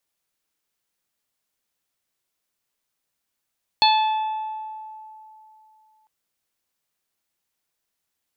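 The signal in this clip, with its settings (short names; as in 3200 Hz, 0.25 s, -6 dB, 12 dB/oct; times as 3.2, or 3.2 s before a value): additive tone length 2.25 s, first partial 869 Hz, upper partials -18.5/-8.5/-5/-1 dB, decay 2.94 s, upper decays 1.34/1.27/1.02/0.42 s, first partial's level -14 dB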